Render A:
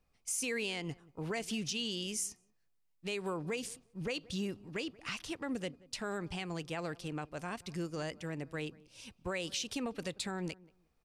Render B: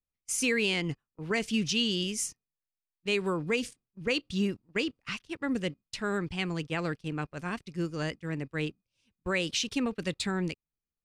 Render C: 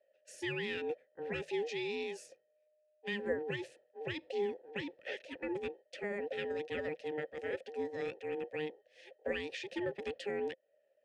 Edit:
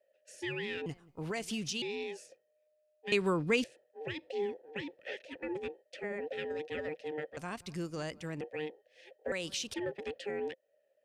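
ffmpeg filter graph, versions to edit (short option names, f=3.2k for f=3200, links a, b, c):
-filter_complex "[0:a]asplit=3[a][b][c];[2:a]asplit=5[d][e][f][g][h];[d]atrim=end=0.862[i];[a]atrim=start=0.858:end=1.822[j];[e]atrim=start=1.818:end=3.122[k];[1:a]atrim=start=3.118:end=3.642[l];[f]atrim=start=3.638:end=7.372[m];[b]atrim=start=7.368:end=8.412[n];[g]atrim=start=8.408:end=9.322[o];[c]atrim=start=9.318:end=9.742[p];[h]atrim=start=9.738[q];[i][j]acrossfade=d=0.004:c1=hsin:c2=hsin[r];[r][k]acrossfade=d=0.004:c1=hsin:c2=hsin[s];[s][l]acrossfade=d=0.004:c1=hsin:c2=hsin[t];[t][m]acrossfade=d=0.004:c1=hsin:c2=hsin[u];[u][n]acrossfade=d=0.004:c1=hsin:c2=hsin[v];[v][o]acrossfade=d=0.004:c1=hsin:c2=hsin[w];[w][p]acrossfade=d=0.004:c1=hsin:c2=hsin[x];[x][q]acrossfade=d=0.004:c1=hsin:c2=hsin"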